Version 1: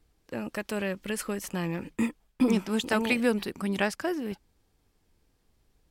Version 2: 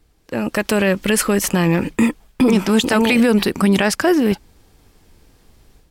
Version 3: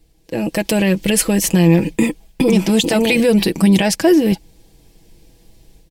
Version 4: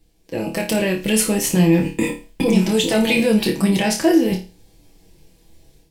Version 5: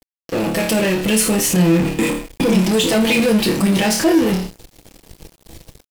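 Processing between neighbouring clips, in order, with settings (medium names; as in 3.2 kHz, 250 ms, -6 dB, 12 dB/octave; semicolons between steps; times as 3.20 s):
level rider gain up to 9 dB; peak limiter -15.5 dBFS, peak gain reduction 11 dB; trim +9 dB
peaking EQ 1.3 kHz -14 dB 0.8 oct; comb 6.1 ms, depth 53%; trim +2 dB
flange 0.42 Hz, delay 9.7 ms, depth 5 ms, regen -42%; flutter echo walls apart 4.7 m, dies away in 0.32 s
in parallel at -7.5 dB: fuzz box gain 39 dB, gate -46 dBFS; on the sum: word length cut 8-bit, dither none; trim -2 dB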